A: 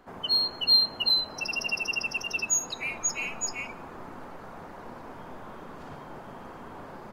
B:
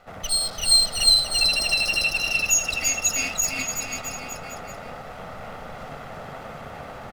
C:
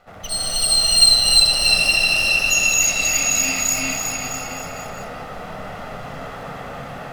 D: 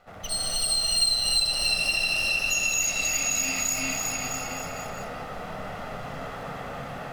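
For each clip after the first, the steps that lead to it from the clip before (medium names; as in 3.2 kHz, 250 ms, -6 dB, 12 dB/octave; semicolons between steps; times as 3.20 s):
comb filter that takes the minimum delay 1.5 ms; bouncing-ball echo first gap 340 ms, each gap 0.85×, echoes 5; trim +5.5 dB
gated-style reverb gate 340 ms rising, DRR -5.5 dB; trim -1.5 dB
compression 2:1, threshold -22 dBFS, peak gain reduction 8 dB; trim -3.5 dB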